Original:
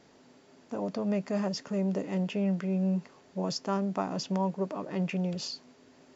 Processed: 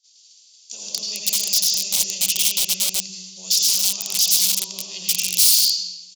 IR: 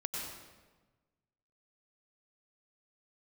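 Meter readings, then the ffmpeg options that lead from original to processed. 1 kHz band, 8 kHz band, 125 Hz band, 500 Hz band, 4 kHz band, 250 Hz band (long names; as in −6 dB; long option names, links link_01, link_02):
−10.0 dB, can't be measured, below −10 dB, −13.0 dB, +23.5 dB, −15.0 dB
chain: -filter_complex "[0:a]acrossover=split=390|3300[link_01][link_02][link_03];[link_01]aecho=1:1:83|166|249|332:0.0794|0.0429|0.0232|0.0125[link_04];[link_03]aeval=exprs='0.0708*sin(PI/2*5.62*val(0)/0.0708)':channel_layout=same[link_05];[link_04][link_02][link_05]amix=inputs=3:normalize=0,aresample=16000,aresample=44100,agate=range=-30dB:threshold=-49dB:ratio=16:detection=peak,equalizer=frequency=260:width_type=o:width=0.27:gain=-14[link_06];[1:a]atrim=start_sample=2205,asetrate=48510,aresample=44100[link_07];[link_06][link_07]afir=irnorm=-1:irlink=0,aeval=exprs='(mod(11.9*val(0)+1,2)-1)/11.9':channel_layout=same,aexciter=amount=14.2:drive=8.5:freq=2700,volume=-14.5dB"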